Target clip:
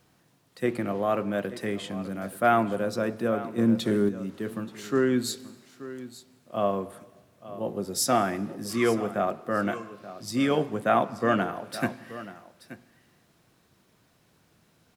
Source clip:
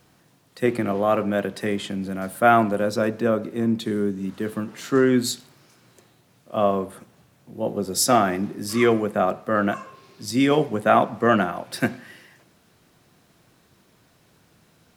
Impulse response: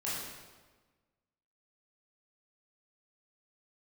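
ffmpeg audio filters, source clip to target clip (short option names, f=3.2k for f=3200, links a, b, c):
-filter_complex "[0:a]aecho=1:1:879:0.168,asplit=2[a][b];[1:a]atrim=start_sample=2205,adelay=139[c];[b][c]afir=irnorm=-1:irlink=0,volume=-27dB[d];[a][d]amix=inputs=2:normalize=0,asettb=1/sr,asplit=3[e][f][g];[e]atrim=end=3.584[h];[f]atrim=start=3.58:end=4.09,asetpts=PTS-STARTPTS,afade=t=in:d=0.004:c=qsin,afade=t=out:st=0.506:d=0.004:c=qsin,acontrast=39[i];[g]atrim=start=4.086[j];[h][i]acrossfade=d=0.004:c1=hsin:c2=qsin[k];[k][j]acrossfade=d=0.004:c1=qsin:c2=hsin,volume=-5.5dB"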